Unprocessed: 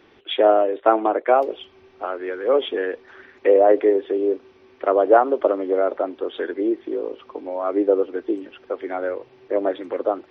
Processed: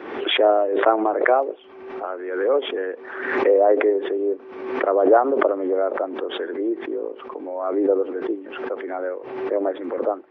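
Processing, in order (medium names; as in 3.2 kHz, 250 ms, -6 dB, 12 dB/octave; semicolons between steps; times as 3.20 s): three-band isolator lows -21 dB, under 220 Hz, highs -19 dB, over 2.1 kHz; swell ahead of each attack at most 53 dB/s; trim -1.5 dB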